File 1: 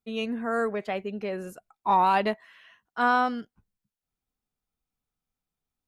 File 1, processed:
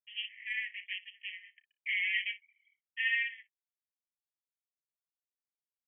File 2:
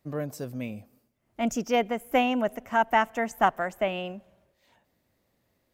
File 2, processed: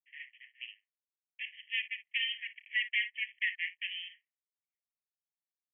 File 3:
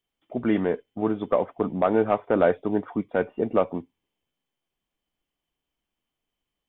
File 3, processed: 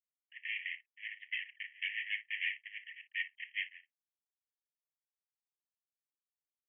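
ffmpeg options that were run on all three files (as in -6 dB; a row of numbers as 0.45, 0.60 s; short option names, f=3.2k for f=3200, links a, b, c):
-filter_complex "[0:a]anlmdn=0.0631,asplit=2[a][b];[b]aecho=0:1:31|57:0.168|0.15[c];[a][c]amix=inputs=2:normalize=0,afreqshift=-13,aeval=exprs='0.447*(cos(1*acos(clip(val(0)/0.447,-1,1)))-cos(1*PI/2))+0.0631*(cos(5*acos(clip(val(0)/0.447,-1,1)))-cos(5*PI/2))':c=same,aeval=exprs='max(val(0),0)':c=same,afreqshift=380,asuperpass=centerf=2400:order=20:qfactor=1.7"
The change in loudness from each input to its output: -7.5, -7.0, -14.5 LU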